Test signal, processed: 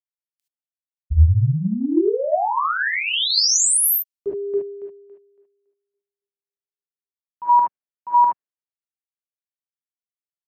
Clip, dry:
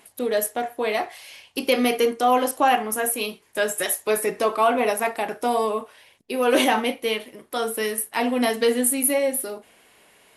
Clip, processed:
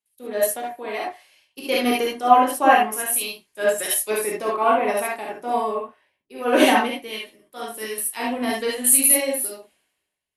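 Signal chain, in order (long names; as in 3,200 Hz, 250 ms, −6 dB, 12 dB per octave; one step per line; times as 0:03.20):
reverb whose tail is shaped and stops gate 90 ms rising, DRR −2 dB
multiband upward and downward expander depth 100%
level −4 dB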